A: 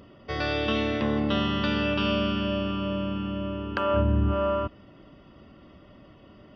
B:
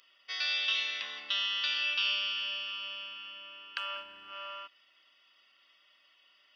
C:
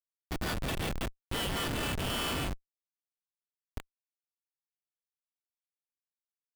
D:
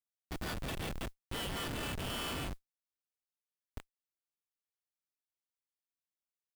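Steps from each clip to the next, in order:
Chebyshev high-pass 2.8 kHz, order 2; dynamic bell 5.2 kHz, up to +4 dB, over -49 dBFS, Q 0.78; trim +1.5 dB
two-slope reverb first 0.3 s, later 1.7 s, DRR -8 dB; rotary cabinet horn 5.5 Hz, later 0.85 Hz, at 1.41 s; Schmitt trigger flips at -24.5 dBFS
modulation noise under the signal 30 dB; trim -5.5 dB

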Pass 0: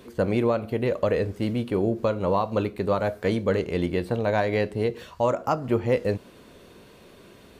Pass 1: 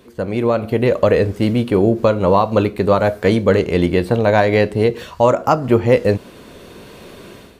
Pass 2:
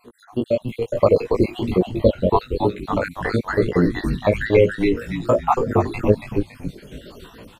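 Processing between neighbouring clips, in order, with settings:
level rider gain up to 12.5 dB
random holes in the spectrogram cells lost 73%; chorus 1.1 Hz, delay 16.5 ms, depth 4.4 ms; frequency-shifting echo 280 ms, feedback 37%, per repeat -120 Hz, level -5 dB; trim +3 dB

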